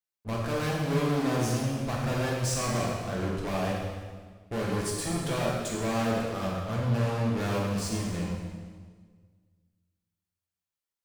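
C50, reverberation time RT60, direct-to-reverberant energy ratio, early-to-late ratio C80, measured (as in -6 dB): 0.0 dB, 1.6 s, -4.5 dB, 2.0 dB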